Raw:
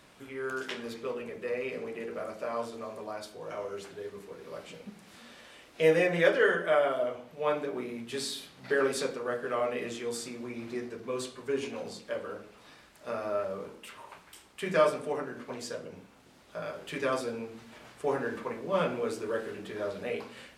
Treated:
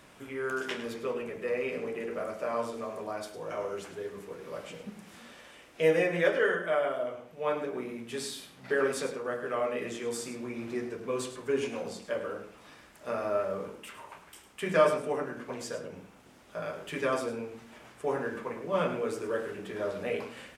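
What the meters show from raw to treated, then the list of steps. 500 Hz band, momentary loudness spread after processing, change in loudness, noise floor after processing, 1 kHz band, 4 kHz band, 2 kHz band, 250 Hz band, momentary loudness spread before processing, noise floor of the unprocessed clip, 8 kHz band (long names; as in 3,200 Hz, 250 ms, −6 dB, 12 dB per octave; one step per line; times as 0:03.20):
0.0 dB, 18 LU, 0.0 dB, −56 dBFS, 0.0 dB, −2.0 dB, −0.5 dB, +0.5 dB, 20 LU, −57 dBFS, 0.0 dB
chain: speech leveller within 4 dB 2 s
parametric band 4,200 Hz −5 dB 0.51 octaves
on a send: single-tap delay 104 ms −12 dB
on the sum: level −1.5 dB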